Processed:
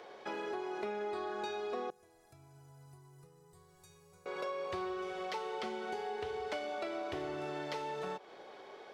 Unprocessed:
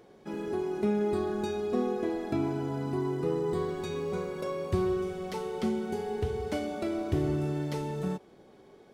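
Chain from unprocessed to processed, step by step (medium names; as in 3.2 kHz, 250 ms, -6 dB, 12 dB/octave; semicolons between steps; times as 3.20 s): three-band isolator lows -23 dB, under 490 Hz, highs -16 dB, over 5.6 kHz; compression 4:1, threshold -48 dBFS, peak gain reduction 12.5 dB; 1.90–4.26 s: FFT filter 150 Hz 0 dB, 230 Hz -26 dB, 3.4 kHz -25 dB, 10 kHz +6 dB; trim +10 dB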